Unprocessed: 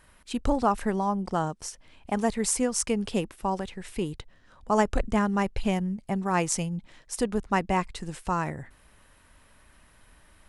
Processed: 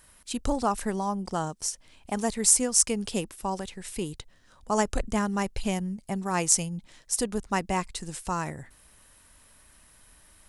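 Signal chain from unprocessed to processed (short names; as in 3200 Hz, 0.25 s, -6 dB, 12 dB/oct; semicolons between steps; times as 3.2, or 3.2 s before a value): tone controls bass 0 dB, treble +11 dB; gain -2.5 dB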